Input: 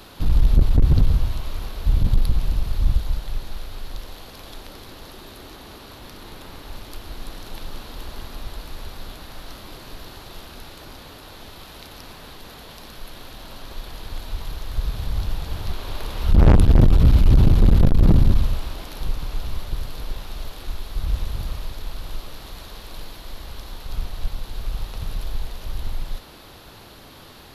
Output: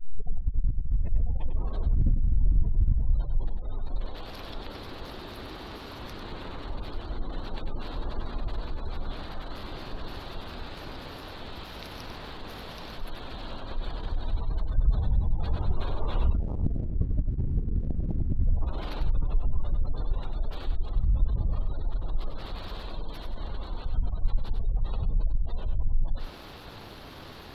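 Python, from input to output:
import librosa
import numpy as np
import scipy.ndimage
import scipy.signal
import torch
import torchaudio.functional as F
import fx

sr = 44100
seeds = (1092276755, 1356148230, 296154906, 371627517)

p1 = fx.tape_start_head(x, sr, length_s=1.71)
p2 = fx.high_shelf(p1, sr, hz=4900.0, db=-7.0)
p3 = fx.spec_gate(p2, sr, threshold_db=-30, keep='strong')
p4 = fx.over_compress(p3, sr, threshold_db=-17.0, ratio=-0.5)
p5 = fx.leveller(p4, sr, passes=1)
p6 = p5 + fx.echo_single(p5, sr, ms=97, db=-7.5, dry=0)
y = F.gain(torch.from_numpy(p6), -6.0).numpy()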